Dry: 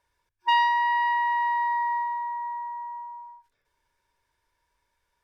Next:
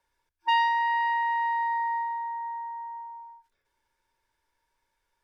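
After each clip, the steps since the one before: frequency shift -23 Hz; gain -2 dB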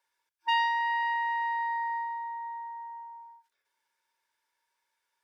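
HPF 1100 Hz 6 dB/oct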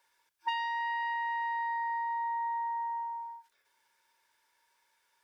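compressor 16:1, threshold -38 dBFS, peak gain reduction 16 dB; gain +7.5 dB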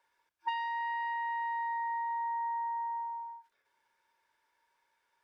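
high shelf 3200 Hz -12 dB

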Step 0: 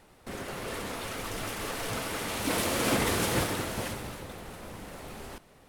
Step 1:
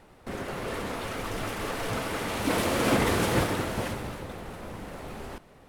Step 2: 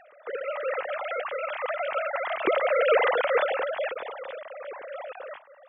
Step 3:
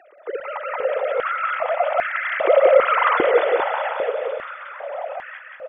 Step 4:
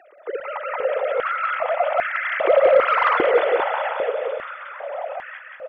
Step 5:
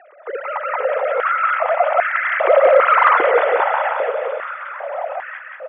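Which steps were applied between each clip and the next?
high shelf 3200 Hz -8 dB; gain +4 dB
sine-wave speech; gain +2 dB
feedback echo 0.181 s, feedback 60%, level -3.5 dB; stepped high-pass 2.5 Hz 350–1700 Hz
soft clip -4.5 dBFS, distortion -24 dB
BPF 630–2100 Hz; gain +7 dB

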